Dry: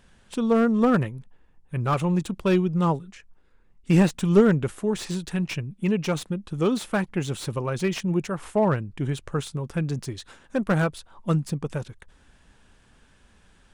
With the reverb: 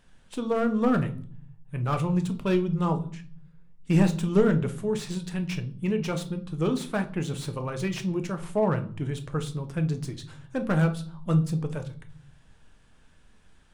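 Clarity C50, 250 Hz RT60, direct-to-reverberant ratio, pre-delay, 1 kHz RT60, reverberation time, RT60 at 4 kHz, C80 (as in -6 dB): 13.5 dB, 0.90 s, 7.0 dB, 6 ms, 0.45 s, 0.50 s, 0.40 s, 20.0 dB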